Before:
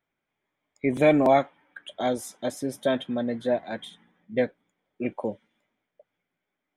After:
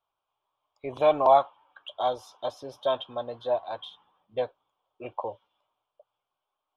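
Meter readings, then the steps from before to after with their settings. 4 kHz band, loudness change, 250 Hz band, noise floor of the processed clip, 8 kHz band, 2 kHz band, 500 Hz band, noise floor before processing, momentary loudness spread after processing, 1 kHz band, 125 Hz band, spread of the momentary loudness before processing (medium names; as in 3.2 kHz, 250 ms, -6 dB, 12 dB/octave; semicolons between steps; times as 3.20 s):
0.0 dB, -1.5 dB, -16.0 dB, under -85 dBFS, under -15 dB, -10.5 dB, -1.5 dB, -84 dBFS, 19 LU, +3.5 dB, -11.5 dB, 17 LU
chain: FFT filter 110 Hz 0 dB, 210 Hz -17 dB, 360 Hz -4 dB, 1.1 kHz +15 dB, 2 kHz -15 dB, 2.8 kHz +8 dB, 5.5 kHz +1 dB, 8 kHz -17 dB, 11 kHz -12 dB; trim -6 dB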